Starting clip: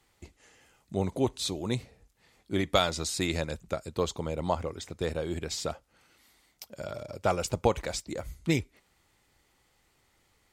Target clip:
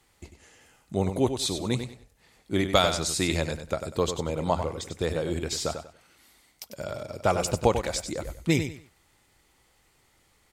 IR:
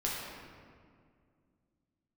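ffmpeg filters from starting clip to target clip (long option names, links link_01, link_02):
-af "equalizer=frequency=9800:width=1.5:gain=3,aecho=1:1:96|192|288:0.376|0.094|0.0235,volume=3dB"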